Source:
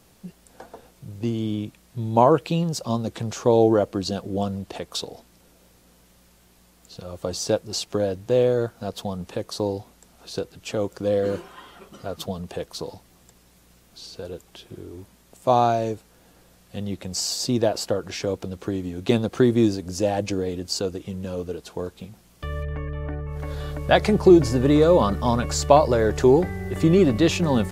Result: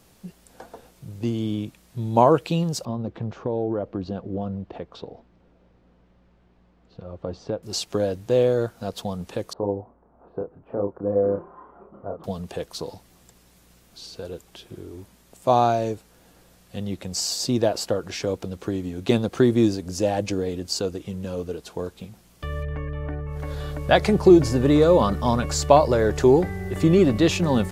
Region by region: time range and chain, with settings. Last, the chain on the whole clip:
2.85–7.63 s: compression 3:1, threshold -21 dBFS + tape spacing loss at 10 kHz 40 dB
9.53–12.24 s: low-pass 1.1 kHz 24 dB/octave + bass shelf 270 Hz -6.5 dB + doubling 30 ms -3.5 dB
whole clip: none

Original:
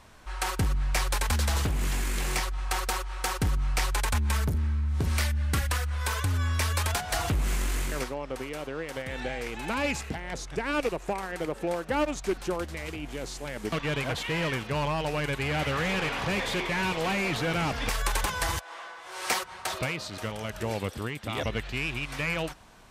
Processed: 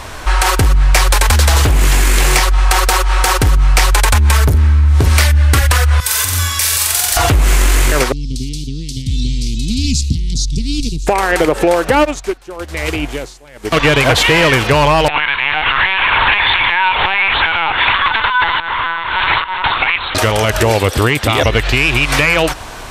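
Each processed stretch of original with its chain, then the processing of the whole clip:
6.00–7.17 s: pre-emphasis filter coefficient 0.9 + flutter echo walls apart 7.8 m, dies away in 0.72 s
8.12–11.07 s: elliptic band-stop 220–4200 Hz, stop band 50 dB + distance through air 69 m
11.95–13.77 s: tremolo 1 Hz, depth 84% + upward expansion, over -50 dBFS
15.08–20.15 s: steep high-pass 740 Hz 48 dB/octave + LPC vocoder at 8 kHz pitch kept
whole clip: peaking EQ 190 Hz -10 dB 0.63 oct; compression, threshold -33 dBFS; loudness maximiser +26.5 dB; trim -1 dB

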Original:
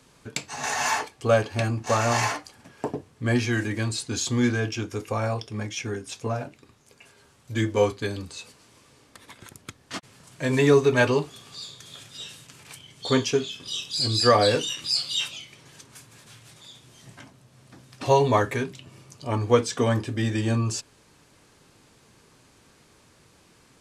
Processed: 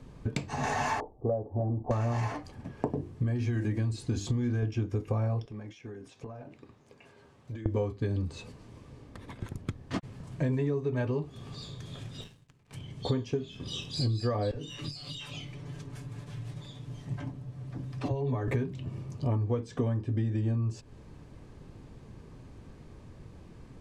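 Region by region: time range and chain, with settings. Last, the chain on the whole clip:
1.00–1.91 s: steep low-pass 830 Hz + peaking EQ 130 Hz -12.5 dB 2.6 oct
2.90–4.63 s: treble shelf 4.7 kHz +5.5 dB + compression 2.5:1, threshold -27 dBFS + hum notches 50/100/150/200/250/300/350/400 Hz
5.45–7.66 s: high-pass 410 Hz 6 dB/octave + treble shelf 8.6 kHz -7 dB + compression 10:1, threshold -45 dBFS
12.21–12.73 s: power-law waveshaper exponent 2 + three bands expanded up and down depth 40%
14.51–18.48 s: comb 6.9 ms, depth 51% + compression 16:1, threshold -31 dBFS + phase dispersion lows, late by 41 ms, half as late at 340 Hz
whole clip: tilt EQ -4 dB/octave; band-stop 1.4 kHz, Q 14; compression 16:1, threshold -26 dBFS

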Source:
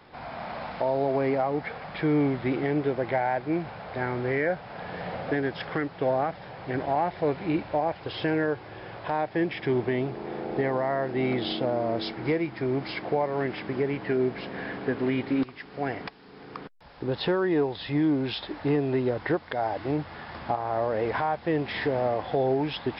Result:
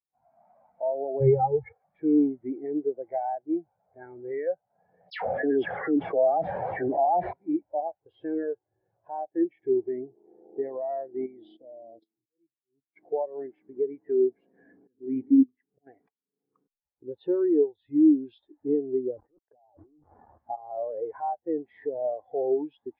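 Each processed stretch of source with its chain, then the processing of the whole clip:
1.20–1.73 s: resonant low shelf 170 Hz +9.5 dB, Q 3 + comb 2.3 ms, depth 98%
5.10–7.33 s: phase dispersion lows, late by 123 ms, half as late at 1.8 kHz + level flattener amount 100%
11.26–12.96 s: level held to a coarse grid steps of 16 dB + slow attack 576 ms
14.59–15.87 s: slow attack 303 ms + bass shelf 250 Hz +6 dB + hum notches 50/100/150/200/250 Hz
19.17–20.38 s: companded quantiser 2-bit + compressor with a negative ratio -31 dBFS, ratio -0.5 + low-pass 1.1 kHz
whole clip: dynamic bell 150 Hz, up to -6 dB, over -45 dBFS, Q 1.5; spectral contrast expander 2.5:1

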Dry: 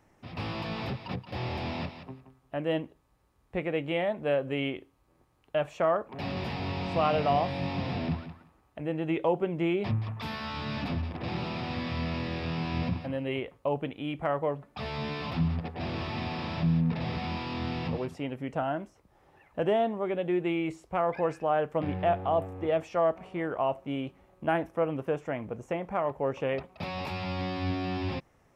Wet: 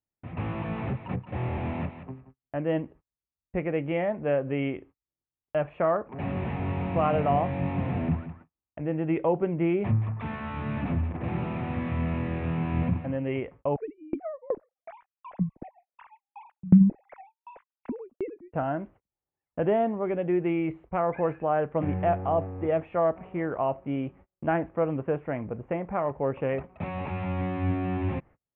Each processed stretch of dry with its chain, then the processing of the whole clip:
13.76–18.53 s: formants replaced by sine waves + tilt EQ -4 dB/octave + sawtooth tremolo in dB decaying 2.7 Hz, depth 31 dB
whole clip: inverse Chebyshev low-pass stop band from 4.8 kHz, stop band 40 dB; gate -52 dBFS, range -36 dB; bass shelf 330 Hz +5.5 dB

